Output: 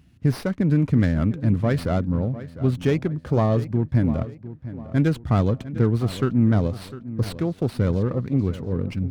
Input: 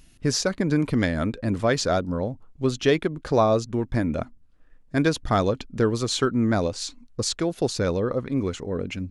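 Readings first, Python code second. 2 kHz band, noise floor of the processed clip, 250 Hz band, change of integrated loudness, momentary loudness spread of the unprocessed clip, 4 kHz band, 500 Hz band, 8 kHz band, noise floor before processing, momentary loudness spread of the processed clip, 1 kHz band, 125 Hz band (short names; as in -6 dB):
-5.0 dB, -48 dBFS, +2.5 dB, +2.0 dB, 7 LU, -10.5 dB, -3.0 dB, under -15 dB, -54 dBFS, 8 LU, -4.5 dB, +7.5 dB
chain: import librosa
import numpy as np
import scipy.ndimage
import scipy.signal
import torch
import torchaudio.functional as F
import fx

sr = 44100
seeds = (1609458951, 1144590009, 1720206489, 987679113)

p1 = np.clip(10.0 ** (18.5 / 20.0) * x, -1.0, 1.0) / 10.0 ** (18.5 / 20.0)
p2 = x + F.gain(torch.from_numpy(p1), -10.0).numpy()
p3 = scipy.signal.sosfilt(scipy.signal.butter(4, 72.0, 'highpass', fs=sr, output='sos'), p2)
p4 = fx.bass_treble(p3, sr, bass_db=13, treble_db=-5)
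p5 = fx.echo_filtered(p4, sr, ms=702, feedback_pct=40, hz=2800.0, wet_db=-14.5)
p6 = fx.running_max(p5, sr, window=5)
y = F.gain(torch.from_numpy(p6), -6.5).numpy()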